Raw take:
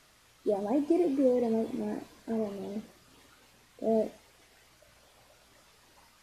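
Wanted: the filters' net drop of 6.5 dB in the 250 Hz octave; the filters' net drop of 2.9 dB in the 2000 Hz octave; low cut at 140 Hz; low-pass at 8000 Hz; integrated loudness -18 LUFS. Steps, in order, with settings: HPF 140 Hz; LPF 8000 Hz; bell 250 Hz -8 dB; bell 2000 Hz -3.5 dB; gain +16.5 dB

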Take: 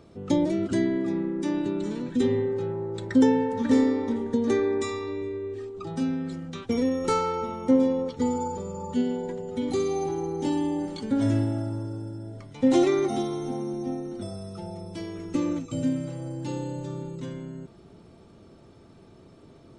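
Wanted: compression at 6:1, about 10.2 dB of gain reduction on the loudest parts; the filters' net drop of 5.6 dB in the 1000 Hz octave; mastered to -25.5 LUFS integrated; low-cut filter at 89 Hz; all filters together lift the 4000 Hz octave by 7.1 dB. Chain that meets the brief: HPF 89 Hz; bell 1000 Hz -8 dB; bell 4000 Hz +9 dB; compressor 6:1, threshold -27 dBFS; gain +7 dB

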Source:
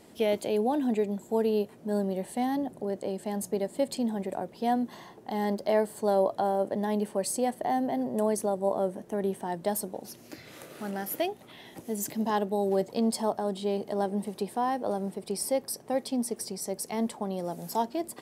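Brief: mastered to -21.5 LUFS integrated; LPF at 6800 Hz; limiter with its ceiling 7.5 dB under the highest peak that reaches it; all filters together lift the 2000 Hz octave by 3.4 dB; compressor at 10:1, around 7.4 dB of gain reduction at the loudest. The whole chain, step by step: LPF 6800 Hz; bell 2000 Hz +4 dB; compressor 10:1, threshold -28 dBFS; gain +14.5 dB; limiter -10.5 dBFS

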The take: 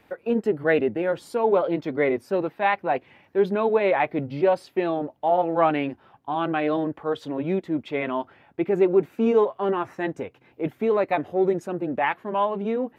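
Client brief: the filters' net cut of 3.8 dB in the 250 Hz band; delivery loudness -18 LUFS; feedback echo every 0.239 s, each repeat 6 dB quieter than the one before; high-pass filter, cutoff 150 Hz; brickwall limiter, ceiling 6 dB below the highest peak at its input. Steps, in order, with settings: HPF 150 Hz; bell 250 Hz -5 dB; limiter -14.5 dBFS; feedback echo 0.239 s, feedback 50%, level -6 dB; gain +8 dB

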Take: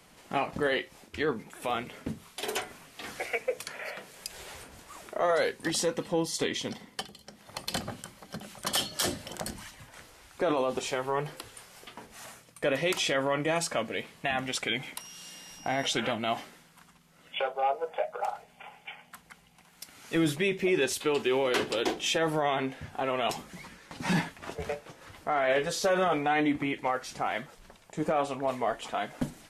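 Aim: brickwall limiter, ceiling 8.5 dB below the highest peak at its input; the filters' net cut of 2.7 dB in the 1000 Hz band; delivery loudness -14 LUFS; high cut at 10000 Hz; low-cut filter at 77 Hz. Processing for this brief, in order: HPF 77 Hz; LPF 10000 Hz; bell 1000 Hz -4 dB; gain +21 dB; limiter -2 dBFS

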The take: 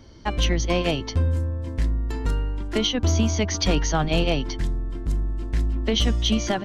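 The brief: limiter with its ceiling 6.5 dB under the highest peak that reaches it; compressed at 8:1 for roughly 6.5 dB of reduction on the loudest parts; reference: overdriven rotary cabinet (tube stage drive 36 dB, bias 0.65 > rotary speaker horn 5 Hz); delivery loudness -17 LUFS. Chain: compressor 8:1, threshold -23 dBFS; limiter -20.5 dBFS; tube stage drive 36 dB, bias 0.65; rotary speaker horn 5 Hz; gain +24.5 dB

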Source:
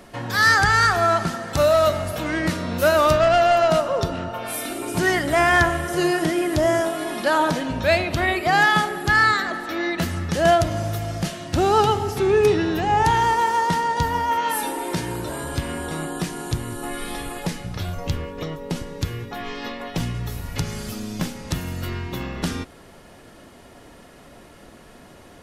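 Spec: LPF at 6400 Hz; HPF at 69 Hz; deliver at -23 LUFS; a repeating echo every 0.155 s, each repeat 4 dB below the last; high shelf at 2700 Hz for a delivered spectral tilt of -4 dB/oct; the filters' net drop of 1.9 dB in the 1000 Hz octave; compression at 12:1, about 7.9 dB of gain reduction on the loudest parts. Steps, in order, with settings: HPF 69 Hz; LPF 6400 Hz; bell 1000 Hz -4 dB; high shelf 2700 Hz +8 dB; compressor 12:1, threshold -20 dBFS; feedback echo 0.155 s, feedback 63%, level -4 dB; gain +0.5 dB

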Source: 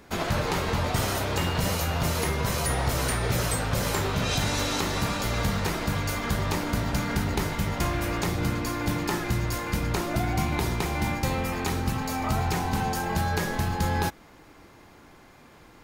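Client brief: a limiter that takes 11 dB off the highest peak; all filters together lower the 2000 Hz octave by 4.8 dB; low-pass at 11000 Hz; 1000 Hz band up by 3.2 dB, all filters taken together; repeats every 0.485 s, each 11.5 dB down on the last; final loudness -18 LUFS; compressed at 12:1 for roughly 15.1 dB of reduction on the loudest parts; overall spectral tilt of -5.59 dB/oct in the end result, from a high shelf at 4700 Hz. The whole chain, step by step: LPF 11000 Hz; bell 1000 Hz +6 dB; bell 2000 Hz -7.5 dB; high shelf 4700 Hz -6 dB; compressor 12:1, threshold -37 dBFS; limiter -37 dBFS; feedback echo 0.485 s, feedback 27%, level -11.5 dB; gain +28 dB

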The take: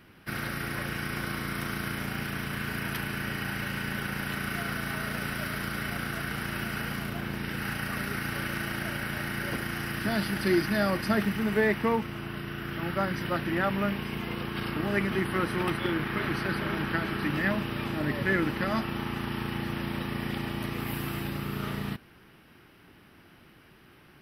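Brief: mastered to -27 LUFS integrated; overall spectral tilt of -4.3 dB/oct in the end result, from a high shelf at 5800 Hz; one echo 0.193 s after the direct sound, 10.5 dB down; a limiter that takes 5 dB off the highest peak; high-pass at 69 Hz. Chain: HPF 69 Hz; high shelf 5800 Hz -4.5 dB; limiter -18 dBFS; echo 0.193 s -10.5 dB; gain +4.5 dB

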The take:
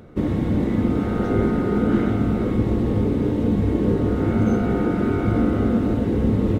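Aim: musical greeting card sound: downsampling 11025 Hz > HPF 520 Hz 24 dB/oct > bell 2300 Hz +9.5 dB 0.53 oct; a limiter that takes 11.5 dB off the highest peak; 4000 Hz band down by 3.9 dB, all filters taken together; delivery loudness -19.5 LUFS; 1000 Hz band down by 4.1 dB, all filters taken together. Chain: bell 1000 Hz -6 dB; bell 4000 Hz -8.5 dB; limiter -18 dBFS; downsampling 11025 Hz; HPF 520 Hz 24 dB/oct; bell 2300 Hz +9.5 dB 0.53 oct; gain +18.5 dB

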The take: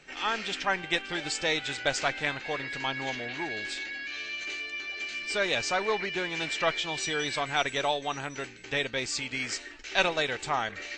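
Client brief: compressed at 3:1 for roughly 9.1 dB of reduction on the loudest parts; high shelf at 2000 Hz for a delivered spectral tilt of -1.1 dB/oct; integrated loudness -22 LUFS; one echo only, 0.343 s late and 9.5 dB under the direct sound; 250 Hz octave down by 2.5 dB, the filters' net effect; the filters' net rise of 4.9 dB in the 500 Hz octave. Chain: bell 250 Hz -8 dB; bell 500 Hz +7.5 dB; high shelf 2000 Hz +5 dB; compressor 3:1, threshold -29 dBFS; echo 0.343 s -9.5 dB; gain +9 dB

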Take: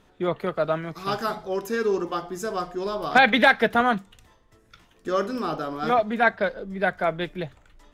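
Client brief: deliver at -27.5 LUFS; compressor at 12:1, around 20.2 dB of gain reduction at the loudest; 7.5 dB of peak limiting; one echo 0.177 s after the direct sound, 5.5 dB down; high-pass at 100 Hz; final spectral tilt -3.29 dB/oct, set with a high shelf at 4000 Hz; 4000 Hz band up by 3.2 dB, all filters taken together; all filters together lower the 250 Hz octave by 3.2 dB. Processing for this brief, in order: HPF 100 Hz; bell 250 Hz -4 dB; high shelf 4000 Hz -6 dB; bell 4000 Hz +7 dB; compressor 12:1, threshold -32 dBFS; limiter -28 dBFS; echo 0.177 s -5.5 dB; gain +10 dB

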